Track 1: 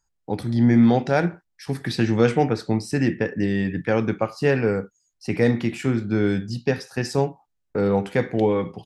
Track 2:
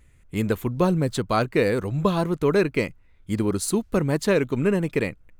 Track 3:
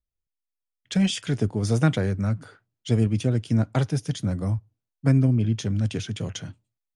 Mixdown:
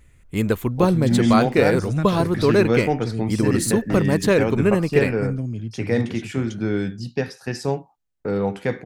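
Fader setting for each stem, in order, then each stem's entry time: -2.0, +3.0, -7.0 dB; 0.50, 0.00, 0.15 s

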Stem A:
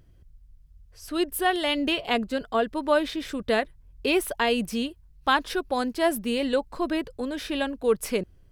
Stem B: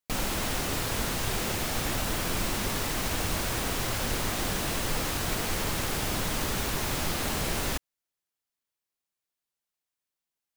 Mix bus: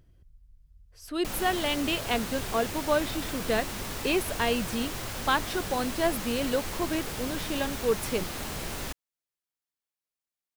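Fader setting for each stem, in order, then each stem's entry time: -3.5, -5.5 dB; 0.00, 1.15 s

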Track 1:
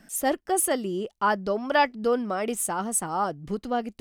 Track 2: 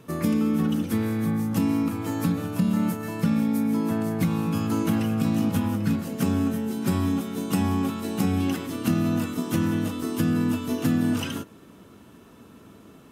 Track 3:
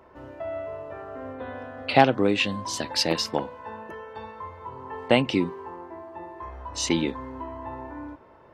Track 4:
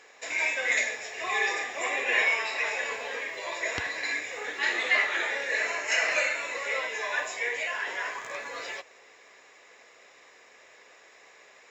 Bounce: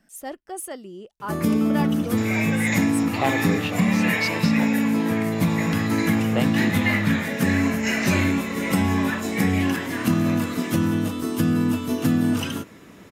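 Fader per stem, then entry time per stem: -9.5, +2.5, -7.0, -0.5 dB; 0.00, 1.20, 1.25, 1.95 s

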